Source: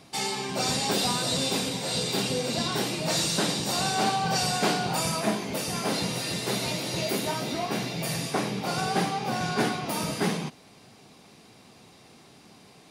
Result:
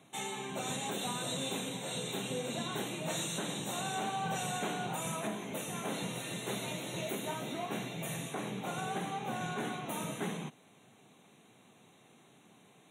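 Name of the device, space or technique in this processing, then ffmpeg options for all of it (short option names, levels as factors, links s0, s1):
PA system with an anti-feedback notch: -af "highpass=f=110:w=0.5412,highpass=f=110:w=1.3066,asuperstop=centerf=4900:order=8:qfactor=2.5,alimiter=limit=0.126:level=0:latency=1:release=140,volume=0.398"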